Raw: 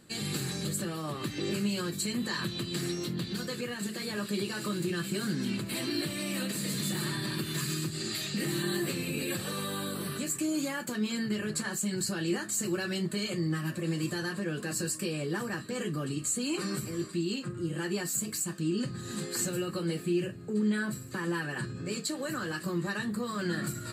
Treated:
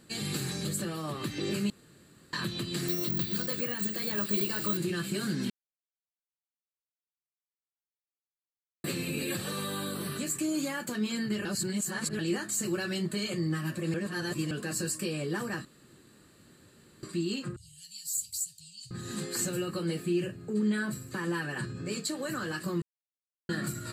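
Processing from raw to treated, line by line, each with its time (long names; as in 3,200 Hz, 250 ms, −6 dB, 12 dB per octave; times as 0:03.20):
0:01.70–0:02.33: fill with room tone
0:02.88–0:04.77: bad sample-rate conversion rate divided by 2×, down filtered, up zero stuff
0:05.50–0:08.84: silence
0:11.45–0:12.19: reverse
0:13.94–0:14.51: reverse
0:15.65–0:17.03: fill with room tone
0:17.56–0:18.91: inverse Chebyshev band-stop filter 340–1,000 Hz, stop band 80 dB
0:22.82–0:23.49: silence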